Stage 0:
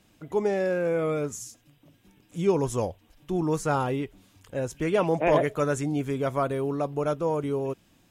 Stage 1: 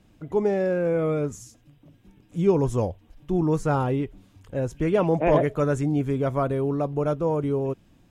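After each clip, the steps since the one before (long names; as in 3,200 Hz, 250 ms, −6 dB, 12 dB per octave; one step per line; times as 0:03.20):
spectral tilt −2 dB per octave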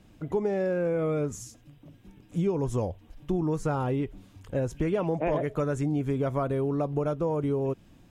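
downward compressor, threshold −26 dBFS, peak gain reduction 11.5 dB
level +2 dB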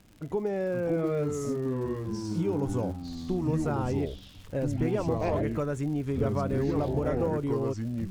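surface crackle 100 per second −39 dBFS
delay with pitch and tempo change per echo 470 ms, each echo −4 semitones, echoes 3
level −2.5 dB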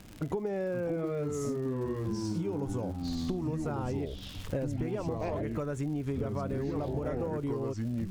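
downward compressor 12 to 1, threshold −37 dBFS, peak gain reduction 15 dB
level +7.5 dB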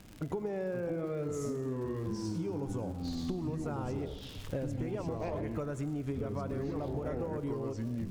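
convolution reverb RT60 1.4 s, pre-delay 85 ms, DRR 12 dB
level −3 dB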